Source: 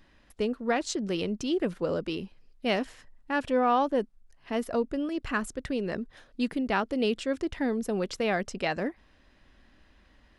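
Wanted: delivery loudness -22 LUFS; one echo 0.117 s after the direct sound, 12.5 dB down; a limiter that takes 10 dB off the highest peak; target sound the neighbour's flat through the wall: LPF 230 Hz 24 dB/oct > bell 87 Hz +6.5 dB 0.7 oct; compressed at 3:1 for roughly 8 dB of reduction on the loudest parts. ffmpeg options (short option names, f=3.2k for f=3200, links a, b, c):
-af "acompressor=threshold=-32dB:ratio=3,alimiter=level_in=6.5dB:limit=-24dB:level=0:latency=1,volume=-6.5dB,lowpass=f=230:w=0.5412,lowpass=f=230:w=1.3066,equalizer=f=87:t=o:w=0.7:g=6.5,aecho=1:1:117:0.237,volume=25dB"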